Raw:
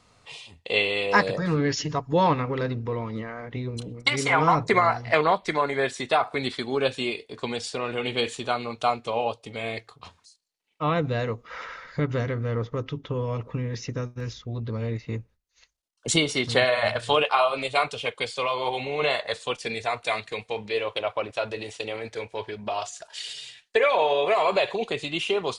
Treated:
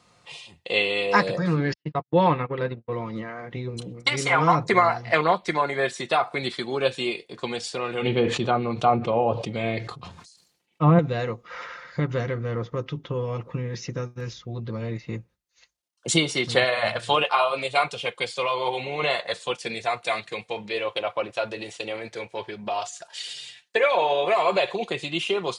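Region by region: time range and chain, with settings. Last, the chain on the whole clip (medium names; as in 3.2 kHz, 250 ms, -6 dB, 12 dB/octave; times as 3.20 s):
1.73–2.92 s: low-pass 3.8 kHz 24 dB/octave + gate -29 dBFS, range -51 dB
8.02–10.99 s: low-pass that closes with the level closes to 1.6 kHz, closed at -22.5 dBFS + bass shelf 370 Hz +12 dB + decay stretcher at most 72 dB/s
whole clip: high-pass 73 Hz; comb 5.7 ms, depth 39%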